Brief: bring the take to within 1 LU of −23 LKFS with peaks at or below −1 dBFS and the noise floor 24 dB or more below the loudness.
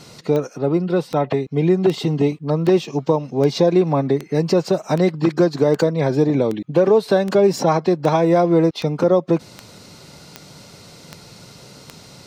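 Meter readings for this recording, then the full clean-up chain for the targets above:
number of clicks 16; integrated loudness −18.0 LKFS; sample peak −4.5 dBFS; target loudness −23.0 LKFS
→ click removal
level −5 dB

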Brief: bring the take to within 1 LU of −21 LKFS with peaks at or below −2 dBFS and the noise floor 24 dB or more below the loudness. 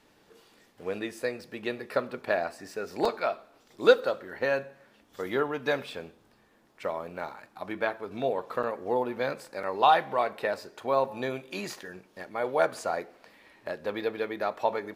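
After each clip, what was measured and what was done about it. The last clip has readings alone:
number of dropouts 3; longest dropout 4.1 ms; integrated loudness −30.0 LKFS; sample peak −6.5 dBFS; target loudness −21.0 LKFS
→ repair the gap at 0:03.05/0:08.63/0:09.63, 4.1 ms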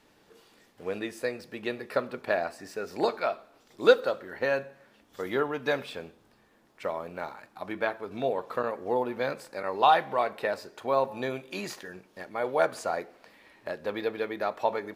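number of dropouts 0; integrated loudness −30.0 LKFS; sample peak −6.5 dBFS; target loudness −21.0 LKFS
→ level +9 dB
brickwall limiter −2 dBFS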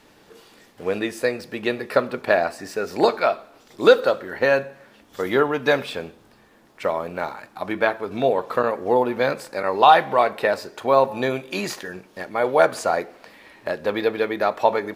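integrated loudness −21.5 LKFS; sample peak −2.0 dBFS; background noise floor −54 dBFS

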